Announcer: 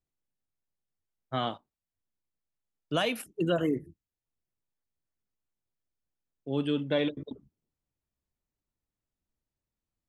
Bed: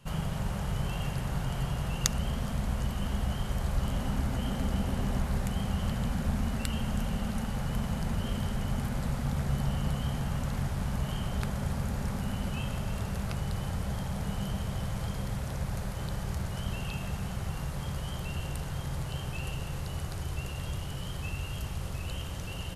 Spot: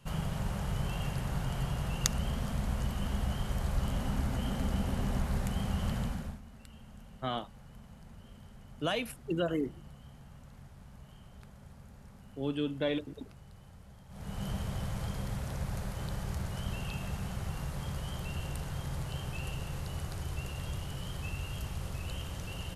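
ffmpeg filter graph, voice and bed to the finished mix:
ffmpeg -i stem1.wav -i stem2.wav -filter_complex "[0:a]adelay=5900,volume=-4dB[link_01];[1:a]volume=16dB,afade=type=out:start_time=5.98:duration=0.42:silence=0.11885,afade=type=in:start_time=14.08:duration=0.41:silence=0.125893[link_02];[link_01][link_02]amix=inputs=2:normalize=0" out.wav

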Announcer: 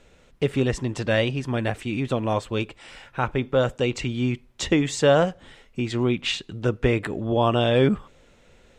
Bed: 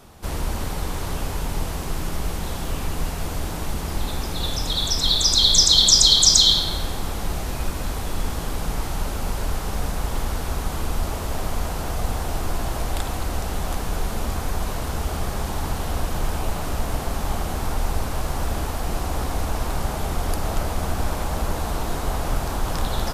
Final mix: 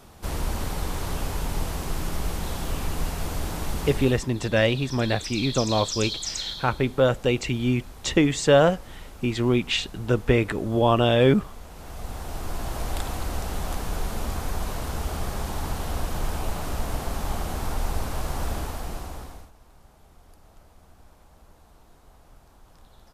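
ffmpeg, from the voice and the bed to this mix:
ffmpeg -i stem1.wav -i stem2.wav -filter_complex "[0:a]adelay=3450,volume=1dB[link_01];[1:a]volume=11.5dB,afade=type=out:start_time=3.84:duration=0.42:silence=0.177828,afade=type=in:start_time=11.69:duration=1.22:silence=0.211349,afade=type=out:start_time=18.49:duration=1.02:silence=0.0530884[link_02];[link_01][link_02]amix=inputs=2:normalize=0" out.wav

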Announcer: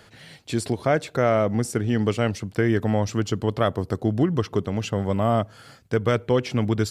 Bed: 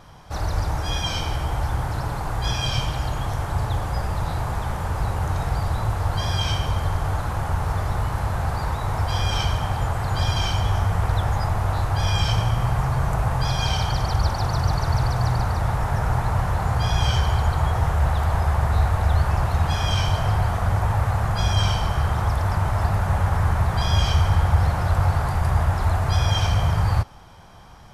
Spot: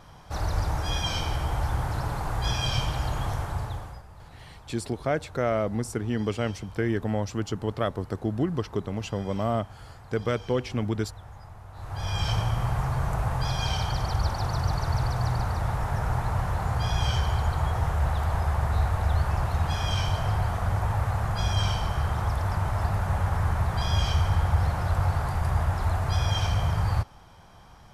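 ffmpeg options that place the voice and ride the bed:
ffmpeg -i stem1.wav -i stem2.wav -filter_complex "[0:a]adelay=4200,volume=-5.5dB[link_01];[1:a]volume=14.5dB,afade=type=out:start_time=3.28:duration=0.75:silence=0.105925,afade=type=in:start_time=11.73:duration=0.58:silence=0.133352[link_02];[link_01][link_02]amix=inputs=2:normalize=0" out.wav

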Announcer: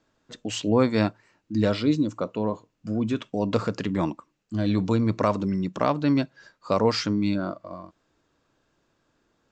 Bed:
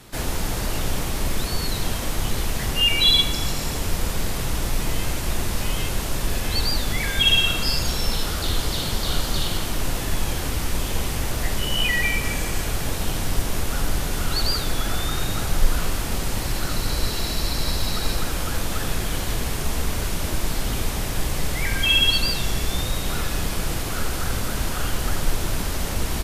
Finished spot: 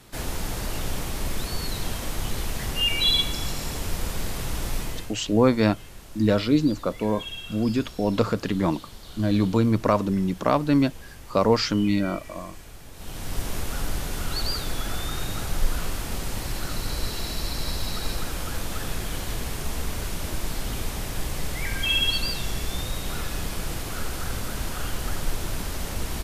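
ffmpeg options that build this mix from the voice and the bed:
ffmpeg -i stem1.wav -i stem2.wav -filter_complex "[0:a]adelay=4650,volume=2dB[link_01];[1:a]volume=9.5dB,afade=type=out:start_time=4.76:duration=0.38:silence=0.188365,afade=type=in:start_time=12.93:duration=0.53:silence=0.199526[link_02];[link_01][link_02]amix=inputs=2:normalize=0" out.wav

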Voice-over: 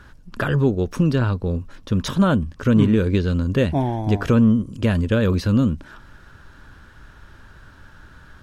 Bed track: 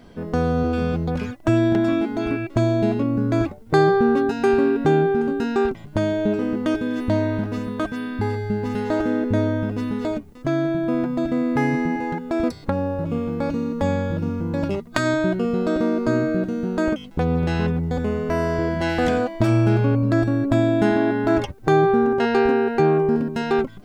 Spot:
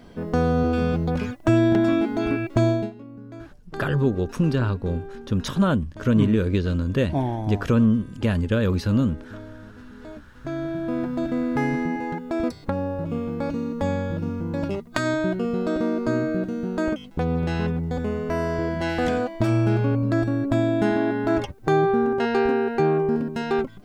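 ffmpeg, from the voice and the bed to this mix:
ffmpeg -i stem1.wav -i stem2.wav -filter_complex "[0:a]adelay=3400,volume=-3dB[link_01];[1:a]volume=16.5dB,afade=type=out:start_time=2.69:duration=0.22:silence=0.105925,afade=type=in:start_time=9.96:duration=1.19:silence=0.149624[link_02];[link_01][link_02]amix=inputs=2:normalize=0" out.wav

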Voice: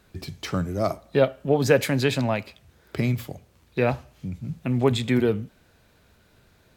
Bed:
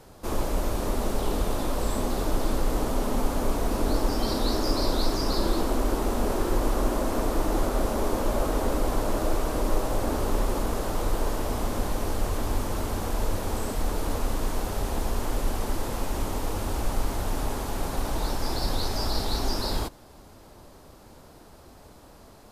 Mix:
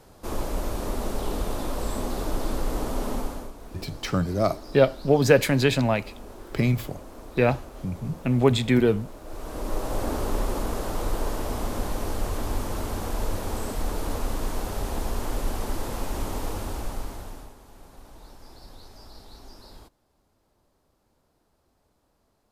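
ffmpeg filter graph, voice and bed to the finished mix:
ffmpeg -i stem1.wav -i stem2.wav -filter_complex "[0:a]adelay=3600,volume=1.5dB[link_01];[1:a]volume=14dB,afade=type=out:start_time=3.11:duration=0.41:silence=0.177828,afade=type=in:start_time=9.24:duration=0.76:silence=0.158489,afade=type=out:start_time=16.45:duration=1.09:silence=0.11885[link_02];[link_01][link_02]amix=inputs=2:normalize=0" out.wav

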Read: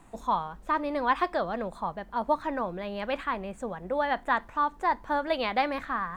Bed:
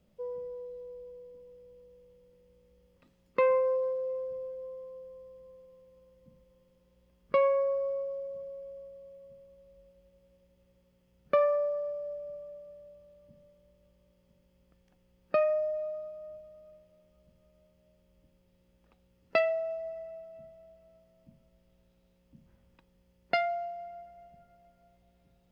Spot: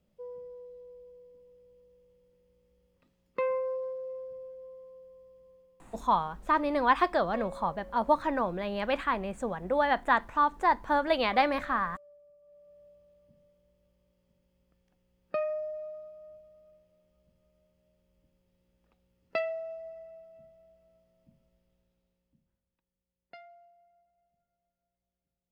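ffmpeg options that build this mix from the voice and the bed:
ffmpeg -i stem1.wav -i stem2.wav -filter_complex "[0:a]adelay=5800,volume=1.5dB[link_01];[1:a]volume=8dB,afade=type=out:start_time=5.53:duration=0.62:silence=0.223872,afade=type=in:start_time=12.4:duration=0.44:silence=0.223872,afade=type=out:start_time=21.44:duration=1.19:silence=0.133352[link_02];[link_01][link_02]amix=inputs=2:normalize=0" out.wav

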